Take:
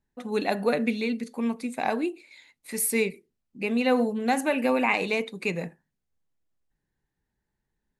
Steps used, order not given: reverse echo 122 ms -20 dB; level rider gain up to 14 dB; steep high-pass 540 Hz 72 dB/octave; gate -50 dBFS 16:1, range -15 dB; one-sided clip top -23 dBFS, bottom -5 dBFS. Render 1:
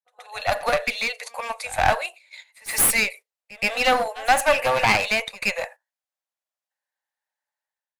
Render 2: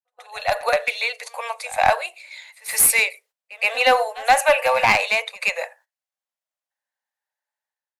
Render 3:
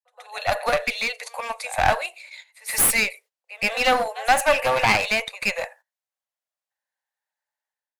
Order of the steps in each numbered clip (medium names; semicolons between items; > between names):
steep high-pass > gate > level rider > one-sided clip > reverse echo; steep high-pass > one-sided clip > level rider > reverse echo > gate; gate > steep high-pass > level rider > reverse echo > one-sided clip